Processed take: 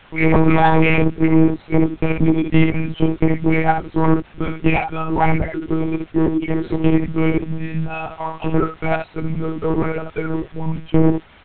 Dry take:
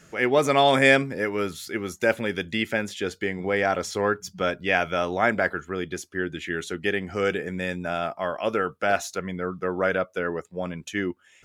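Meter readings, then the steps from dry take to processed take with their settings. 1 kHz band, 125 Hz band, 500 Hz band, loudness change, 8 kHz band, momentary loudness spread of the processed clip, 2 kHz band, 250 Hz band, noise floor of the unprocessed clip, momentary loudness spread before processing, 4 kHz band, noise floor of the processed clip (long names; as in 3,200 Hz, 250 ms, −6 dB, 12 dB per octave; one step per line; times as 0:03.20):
+5.5 dB, +15.5 dB, +2.5 dB, +6.5 dB, below −35 dB, 10 LU, −0.5 dB, +13.0 dB, −57 dBFS, 11 LU, −5.0 dB, −47 dBFS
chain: spectral dynamics exaggerated over time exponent 2
reverb reduction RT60 0.62 s
low-shelf EQ 93 Hz +8 dB
in parallel at 0 dB: downward compressor 6 to 1, threshold −37 dBFS, peak gain reduction 20.5 dB
on the sum: soft clipping −14.5 dBFS, distortion −16 dB
formant filter u
asymmetric clip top −45 dBFS
background noise white −68 dBFS
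high-frequency loss of the air 350 metres
on a send: ambience of single reflections 13 ms −7 dB, 68 ms −5.5 dB
on the sum: one-pitch LPC vocoder at 8 kHz 160 Hz
boost into a limiter +31 dB
level −1 dB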